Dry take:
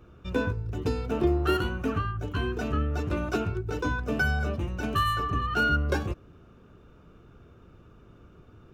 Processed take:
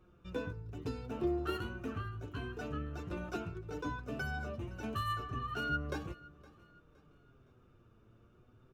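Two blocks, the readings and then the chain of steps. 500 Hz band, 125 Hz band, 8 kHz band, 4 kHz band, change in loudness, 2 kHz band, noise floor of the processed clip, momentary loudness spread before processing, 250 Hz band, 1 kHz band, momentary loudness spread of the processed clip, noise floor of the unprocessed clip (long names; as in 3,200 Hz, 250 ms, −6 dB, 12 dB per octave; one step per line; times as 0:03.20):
−10.5 dB, −12.0 dB, −11.0 dB, −11.0 dB, −11.0 dB, −12.0 dB, −65 dBFS, 7 LU, −10.0 dB, −10.5 dB, 7 LU, −54 dBFS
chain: flanger 0.31 Hz, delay 5.4 ms, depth 3.7 ms, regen +41%
on a send: repeating echo 515 ms, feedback 37%, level −21 dB
on the sum: level −7 dB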